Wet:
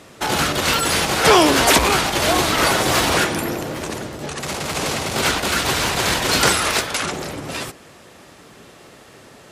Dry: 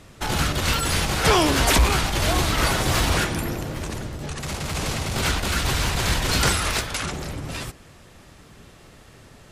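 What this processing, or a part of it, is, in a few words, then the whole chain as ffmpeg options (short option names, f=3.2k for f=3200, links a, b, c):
filter by subtraction: -filter_complex "[0:a]asplit=2[a][b];[b]lowpass=410,volume=-1[c];[a][c]amix=inputs=2:normalize=0,volume=5dB"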